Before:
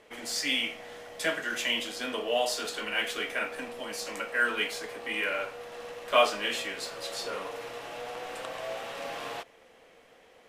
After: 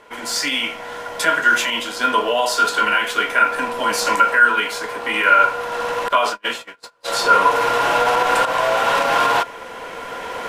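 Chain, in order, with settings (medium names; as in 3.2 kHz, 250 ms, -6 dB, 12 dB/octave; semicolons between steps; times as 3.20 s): recorder AGC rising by 8 dB/s; 6.08–7.08 s: gate -28 dBFS, range -38 dB; peak limiter -18 dBFS, peak gain reduction 9.5 dB; small resonant body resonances 1/1.4 kHz, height 18 dB, ringing for 55 ms; trim +7 dB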